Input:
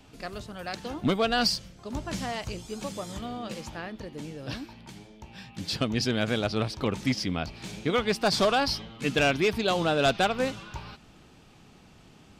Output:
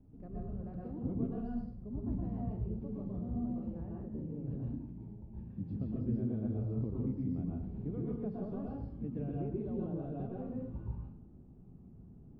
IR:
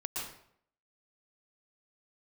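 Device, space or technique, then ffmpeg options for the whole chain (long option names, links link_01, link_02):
television next door: -filter_complex "[0:a]acompressor=threshold=-30dB:ratio=5,lowpass=260[link_01];[1:a]atrim=start_sample=2205[link_02];[link_01][link_02]afir=irnorm=-1:irlink=0"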